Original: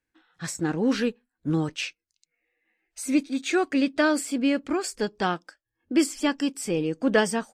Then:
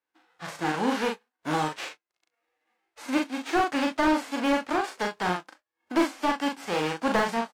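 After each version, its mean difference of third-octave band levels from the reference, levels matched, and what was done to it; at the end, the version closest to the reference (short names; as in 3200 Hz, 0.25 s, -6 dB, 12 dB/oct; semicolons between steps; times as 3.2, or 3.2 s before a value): 9.0 dB: spectral whitening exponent 0.3; band-pass 850 Hz, Q 0.72; on a send: early reflections 39 ms -3.5 dB, 65 ms -18 dB; on the sum: slew limiter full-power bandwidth 82 Hz; gain +2.5 dB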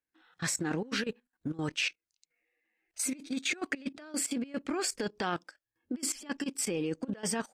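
7.0 dB: negative-ratio compressor -27 dBFS, ratio -0.5; low shelf 87 Hz -8.5 dB; level quantiser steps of 16 dB; dynamic EQ 2200 Hz, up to +3 dB, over -48 dBFS, Q 1.1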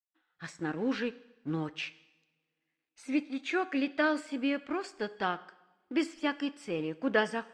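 4.0 dB: G.711 law mismatch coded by A; LPF 2700 Hz 12 dB/oct; tilt +2 dB/oct; two-slope reverb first 0.91 s, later 3.2 s, from -26 dB, DRR 15 dB; gain -4.5 dB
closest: third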